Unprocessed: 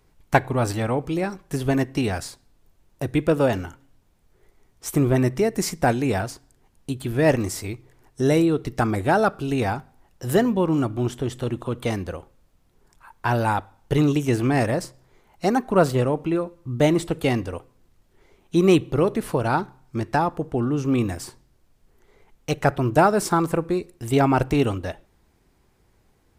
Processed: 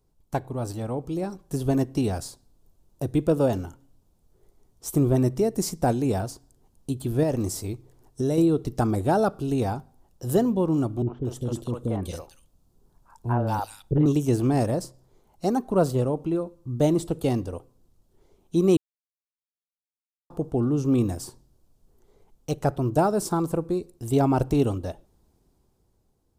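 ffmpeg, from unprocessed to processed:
-filter_complex "[0:a]asettb=1/sr,asplit=3[a][b][c];[a]atrim=end=7.234[d];[b]atrim=start=7.23:end=8.38,asetpts=PTS-STARTPTS,afade=t=in:d=0.004:c=qsin,afade=t=out:st=1.146:d=0.004:c=qsin,acompressor=threshold=-21dB:ratio=3:attack=3.2:release=140:knee=1:detection=peak[e];[c]atrim=start=8.376[f];[d][e]acrossfade=d=0.004:c1=hsin:c2=qsin[g];[g][f]acrossfade=d=0.004:c1=qsin:c2=hsin,asettb=1/sr,asplit=3[h][i][j];[h]atrim=end=11.024[k];[i]atrim=start=11.02:end=14.06,asetpts=PTS-STARTPTS,afade=t=in:d=0.004:c=qsin,afade=t=out:st=3.036:d=0.004:c=qsin,acrossover=split=470|2200[l][m][n];[m]adelay=50[o];[n]adelay=230[p];[l][o][p]amix=inputs=3:normalize=0,atrim=end_sample=134064[q];[j]atrim=start=14.056[r];[k][q]acrossfade=d=0.004:c1=hsin:c2=qsin[s];[s][r]acrossfade=d=0.004:c1=qsin:c2=hsin,asplit=3[t][u][v];[t]atrim=end=18.77,asetpts=PTS-STARTPTS,afade=t=out:st=18.766:d=0.004:c=hsin[w];[u]atrim=start=18.77:end=20.3,asetpts=PTS-STARTPTS,volume=0[x];[v]atrim=start=20.3,asetpts=PTS-STARTPTS,afade=t=in:d=0.004:c=hsin[y];[w][x][y]concat=n=3:v=0:a=1,equalizer=f=2k:w=1:g=-14.5,dynaudnorm=f=230:g=9:m=8dB,volume=-7.5dB"

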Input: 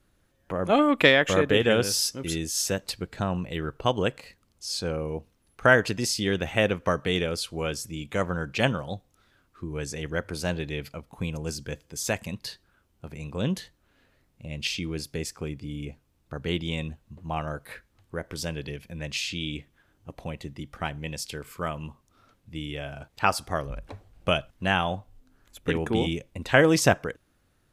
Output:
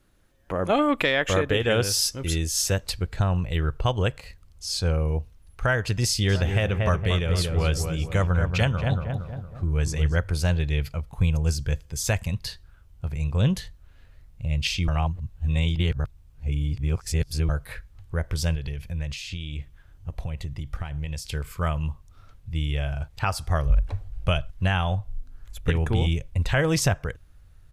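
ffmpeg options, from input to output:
-filter_complex "[0:a]asplit=3[a][b][c];[a]afade=t=out:st=6.28:d=0.02[d];[b]asplit=2[e][f];[f]adelay=231,lowpass=f=1.5k:p=1,volume=-5.5dB,asplit=2[g][h];[h]adelay=231,lowpass=f=1.5k:p=1,volume=0.51,asplit=2[i][j];[j]adelay=231,lowpass=f=1.5k:p=1,volume=0.51,asplit=2[k][l];[l]adelay=231,lowpass=f=1.5k:p=1,volume=0.51,asplit=2[m][n];[n]adelay=231,lowpass=f=1.5k:p=1,volume=0.51,asplit=2[o][p];[p]adelay=231,lowpass=f=1.5k:p=1,volume=0.51[q];[e][g][i][k][m][o][q]amix=inputs=7:normalize=0,afade=t=in:st=6.28:d=0.02,afade=t=out:st=10.16:d=0.02[r];[c]afade=t=in:st=10.16:d=0.02[s];[d][r][s]amix=inputs=3:normalize=0,asettb=1/sr,asplit=3[t][u][v];[t]atrim=end=18.554[w];[u]atrim=start=18.55:end=21.25,asetpts=PTS-STARTPTS,afade=t=in:d=0.004:c=qsin,afade=t=out:st=2.696:d=0.004:c=qsin,acompressor=threshold=-36dB:ratio=5:attack=3.2:release=140:knee=1:detection=peak[x];[v]atrim=start=21.246[y];[w][x]acrossfade=d=0.004:c1=hsin:c2=qsin[z];[z][y]acrossfade=d=0.004:c1=qsin:c2=hsin,asplit=3[aa][ab][ac];[aa]atrim=end=14.882[ad];[ab]atrim=start=14.878:end=17.492,asetpts=PTS-STARTPTS,areverse[ae];[ac]atrim=start=17.488[af];[ad][ae]acrossfade=d=0.004:c1=hsin:c2=hsin[ag];[ag][af]acrossfade=d=0.004:c1=hsin:c2=hsin,asubboost=boost=11.5:cutoff=77,alimiter=limit=-13.5dB:level=0:latency=1:release=311,volume=2.5dB"

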